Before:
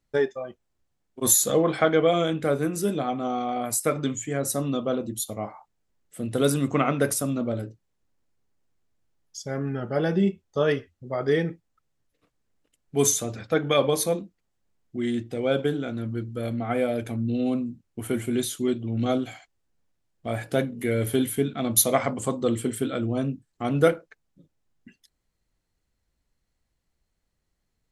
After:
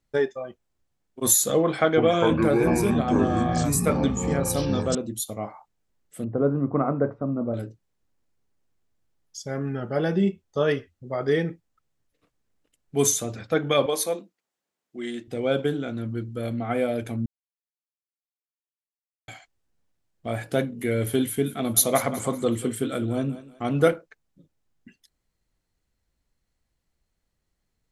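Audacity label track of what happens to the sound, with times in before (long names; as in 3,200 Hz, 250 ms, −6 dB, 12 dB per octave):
1.640000	4.950000	delay with pitch and tempo change per echo 331 ms, each echo −6 semitones, echoes 3
6.240000	7.540000	low-pass filter 1,200 Hz 24 dB per octave
13.860000	15.280000	Bessel high-pass filter 400 Hz
17.260000	19.280000	silence
21.220000	23.930000	feedback echo with a high-pass in the loop 187 ms, feedback 37%, level −13 dB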